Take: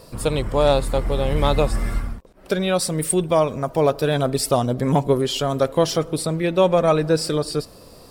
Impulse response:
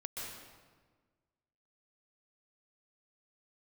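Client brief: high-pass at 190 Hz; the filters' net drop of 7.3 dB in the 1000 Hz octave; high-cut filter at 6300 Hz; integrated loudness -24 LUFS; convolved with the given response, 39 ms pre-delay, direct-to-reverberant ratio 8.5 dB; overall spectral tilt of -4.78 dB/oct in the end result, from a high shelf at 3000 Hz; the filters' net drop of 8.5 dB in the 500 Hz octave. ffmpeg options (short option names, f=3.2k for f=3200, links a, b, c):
-filter_complex "[0:a]highpass=190,lowpass=6.3k,equalizer=f=500:t=o:g=-8.5,equalizer=f=1k:t=o:g=-6,highshelf=f=3k:g=-4.5,asplit=2[a][b];[1:a]atrim=start_sample=2205,adelay=39[c];[b][c]afir=irnorm=-1:irlink=0,volume=-8.5dB[d];[a][d]amix=inputs=2:normalize=0,volume=3dB"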